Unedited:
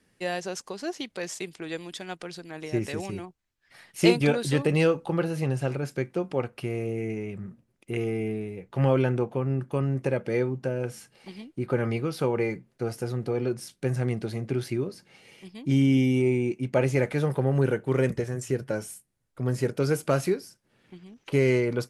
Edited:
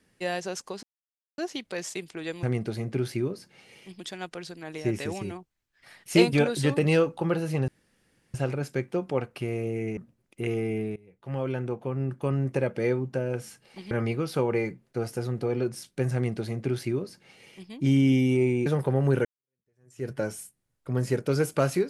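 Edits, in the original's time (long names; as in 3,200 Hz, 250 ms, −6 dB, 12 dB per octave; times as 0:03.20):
0:00.83: splice in silence 0.55 s
0:05.56: splice in room tone 0.66 s
0:07.19–0:07.47: remove
0:08.46–0:09.87: fade in, from −21 dB
0:11.41–0:11.76: remove
0:13.99–0:15.56: duplicate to 0:01.88
0:16.51–0:17.17: remove
0:17.76–0:18.59: fade in exponential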